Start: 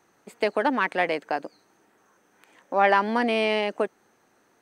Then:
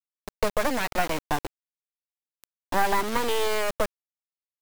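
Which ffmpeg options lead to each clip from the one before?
ffmpeg -i in.wav -filter_complex "[0:a]afftfilt=real='re*pow(10,12/40*sin(2*PI*(0.64*log(max(b,1)*sr/1024/100)/log(2)-(0.63)*(pts-256)/sr)))':imag='im*pow(10,12/40*sin(2*PI*(0.64*log(max(b,1)*sr/1024/100)/log(2)-(0.63)*(pts-256)/sr)))':win_size=1024:overlap=0.75,acrossover=split=250|510|1200[link_01][link_02][link_03][link_04];[link_01]acompressor=threshold=-42dB:ratio=4[link_05];[link_02]acompressor=threshold=-31dB:ratio=4[link_06];[link_03]acompressor=threshold=-27dB:ratio=4[link_07];[link_04]acompressor=threshold=-36dB:ratio=4[link_08];[link_05][link_06][link_07][link_08]amix=inputs=4:normalize=0,acrusher=bits=3:dc=4:mix=0:aa=0.000001,volume=5dB" out.wav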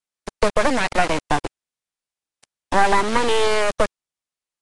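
ffmpeg -i in.wav -af "volume=7dB" -ar 22050 -c:a nellymoser out.flv

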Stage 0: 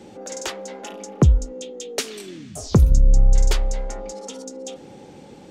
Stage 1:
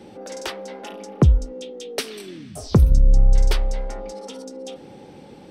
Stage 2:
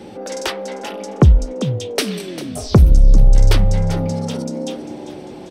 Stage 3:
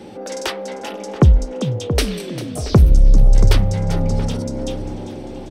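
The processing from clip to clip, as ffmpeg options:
ffmpeg -i in.wav -af "equalizer=frequency=6900:width_type=o:width=0.23:gain=-14.5" out.wav
ffmpeg -i in.wav -filter_complex "[0:a]asplit=6[link_01][link_02][link_03][link_04][link_05][link_06];[link_02]adelay=397,afreqshift=67,volume=-14.5dB[link_07];[link_03]adelay=794,afreqshift=134,volume=-19.7dB[link_08];[link_04]adelay=1191,afreqshift=201,volume=-24.9dB[link_09];[link_05]adelay=1588,afreqshift=268,volume=-30.1dB[link_10];[link_06]adelay=1985,afreqshift=335,volume=-35.3dB[link_11];[link_01][link_07][link_08][link_09][link_10][link_11]amix=inputs=6:normalize=0,acontrast=83" out.wav
ffmpeg -i in.wav -filter_complex "[0:a]asplit=2[link_01][link_02];[link_02]adelay=680,lowpass=frequency=1400:poles=1,volume=-10dB,asplit=2[link_03][link_04];[link_04]adelay=680,lowpass=frequency=1400:poles=1,volume=0.35,asplit=2[link_05][link_06];[link_06]adelay=680,lowpass=frequency=1400:poles=1,volume=0.35,asplit=2[link_07][link_08];[link_08]adelay=680,lowpass=frequency=1400:poles=1,volume=0.35[link_09];[link_01][link_03][link_05][link_07][link_09]amix=inputs=5:normalize=0,volume=-1dB" out.wav

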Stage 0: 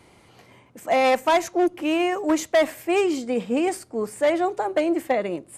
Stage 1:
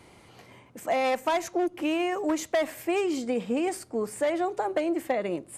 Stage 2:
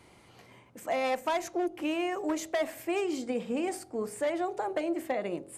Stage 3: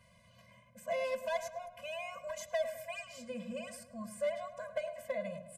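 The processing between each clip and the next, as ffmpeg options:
ffmpeg -i in.wav -af "acompressor=threshold=-25dB:ratio=3" out.wav
ffmpeg -i in.wav -af "bandreject=frequency=46.18:width_type=h:width=4,bandreject=frequency=92.36:width_type=h:width=4,bandreject=frequency=138.54:width_type=h:width=4,bandreject=frequency=184.72:width_type=h:width=4,bandreject=frequency=230.9:width_type=h:width=4,bandreject=frequency=277.08:width_type=h:width=4,bandreject=frequency=323.26:width_type=h:width=4,bandreject=frequency=369.44:width_type=h:width=4,bandreject=frequency=415.62:width_type=h:width=4,bandreject=frequency=461.8:width_type=h:width=4,bandreject=frequency=507.98:width_type=h:width=4,bandreject=frequency=554.16:width_type=h:width=4,bandreject=frequency=600.34:width_type=h:width=4,bandreject=frequency=646.52:width_type=h:width=4,bandreject=frequency=692.7:width_type=h:width=4,bandreject=frequency=738.88:width_type=h:width=4,bandreject=frequency=785.06:width_type=h:width=4,bandreject=frequency=831.24:width_type=h:width=4,bandreject=frequency=877.42:width_type=h:width=4,volume=-3.5dB" out.wav
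ffmpeg -i in.wav -filter_complex "[0:a]asplit=2[link_01][link_02];[link_02]adelay=106,lowpass=frequency=2300:poles=1,volume=-11dB,asplit=2[link_03][link_04];[link_04]adelay=106,lowpass=frequency=2300:poles=1,volume=0.54,asplit=2[link_05][link_06];[link_06]adelay=106,lowpass=frequency=2300:poles=1,volume=0.54,asplit=2[link_07][link_08];[link_08]adelay=106,lowpass=frequency=2300:poles=1,volume=0.54,asplit=2[link_09][link_10];[link_10]adelay=106,lowpass=frequency=2300:poles=1,volume=0.54,asplit=2[link_11][link_12];[link_12]adelay=106,lowpass=frequency=2300:poles=1,volume=0.54[link_13];[link_01][link_03][link_05][link_07][link_09][link_11][link_13]amix=inputs=7:normalize=0,afftfilt=real='re*eq(mod(floor(b*sr/1024/240),2),0)':imag='im*eq(mod(floor(b*sr/1024/240),2),0)':win_size=1024:overlap=0.75,volume=-3.5dB" out.wav

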